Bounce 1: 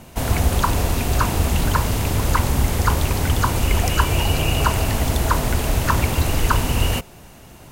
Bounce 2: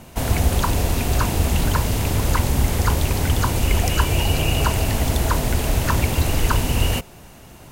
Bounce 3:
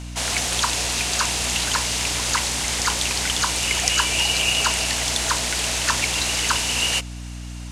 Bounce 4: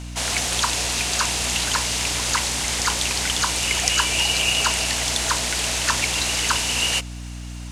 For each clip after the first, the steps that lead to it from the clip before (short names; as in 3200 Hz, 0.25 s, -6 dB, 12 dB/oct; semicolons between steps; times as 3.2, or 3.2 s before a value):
dynamic EQ 1200 Hz, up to -5 dB, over -33 dBFS, Q 1.7
median filter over 3 samples; weighting filter ITU-R 468; hum 60 Hz, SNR 10 dB; gain -1 dB
crackle 260/s -46 dBFS